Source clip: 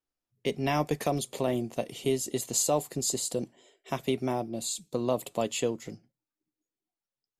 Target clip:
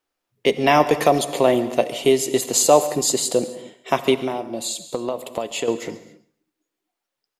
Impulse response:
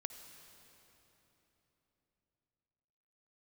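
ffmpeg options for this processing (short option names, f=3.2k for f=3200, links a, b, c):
-filter_complex "[0:a]bass=f=250:g=-12,treble=f=4k:g=-6,asettb=1/sr,asplit=3[a][b][c];[a]atrim=end=4.144[d];[b]atrim=start=4.14:end=5.68,asetpts=PTS-STARTPTS,afade=t=in:d=0.004:c=qsin,afade=t=out:st=1.536:d=0.004:c=qsin,acompressor=threshold=-37dB:ratio=6[e];[c]atrim=start=5.676[f];[d][e]acrossfade=d=0.004:c1=hsin:c2=qsin[g];[g][f]acrossfade=d=0.004:c1=qsin:c2=hsin,aecho=1:1:136|272:0.112|0.0314,asplit=2[h][i];[1:a]atrim=start_sample=2205,afade=t=out:st=0.34:d=0.01,atrim=end_sample=15435[j];[i][j]afir=irnorm=-1:irlink=0,volume=7.5dB[k];[h][k]amix=inputs=2:normalize=0,volume=5.5dB"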